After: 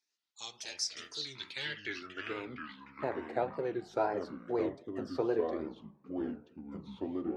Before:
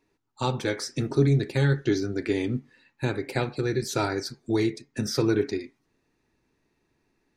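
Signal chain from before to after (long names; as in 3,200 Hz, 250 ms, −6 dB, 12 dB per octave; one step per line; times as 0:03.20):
tape wow and flutter 150 cents
band-pass filter sweep 5,700 Hz → 680 Hz, 0:01.11–0:02.82
delay with pitch and tempo change per echo 92 ms, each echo −5 semitones, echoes 2, each echo −6 dB
level +1.5 dB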